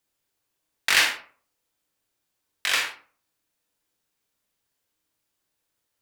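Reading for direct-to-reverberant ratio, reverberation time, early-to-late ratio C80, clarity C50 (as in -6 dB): 1.0 dB, 0.45 s, 11.0 dB, 7.0 dB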